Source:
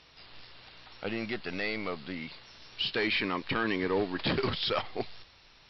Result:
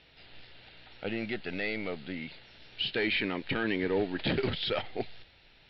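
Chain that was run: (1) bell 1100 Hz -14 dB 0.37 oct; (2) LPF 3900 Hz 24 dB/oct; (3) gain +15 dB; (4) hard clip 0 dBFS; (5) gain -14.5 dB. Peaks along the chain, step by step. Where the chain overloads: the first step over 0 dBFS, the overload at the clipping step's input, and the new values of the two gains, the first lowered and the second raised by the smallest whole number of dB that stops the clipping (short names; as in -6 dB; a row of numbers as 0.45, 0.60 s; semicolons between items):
-17.0, -17.0, -2.0, -2.0, -16.5 dBFS; no overload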